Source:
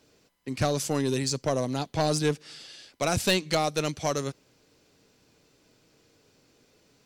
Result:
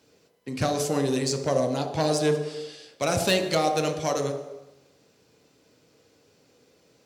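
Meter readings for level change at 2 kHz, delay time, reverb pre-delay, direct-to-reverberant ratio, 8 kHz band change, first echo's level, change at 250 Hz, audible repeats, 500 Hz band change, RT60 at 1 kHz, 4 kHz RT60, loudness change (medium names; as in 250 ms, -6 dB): +1.0 dB, no echo, 6 ms, 3.5 dB, +0.5 dB, no echo, +1.5 dB, no echo, +4.0 dB, 1.0 s, 0.95 s, +2.0 dB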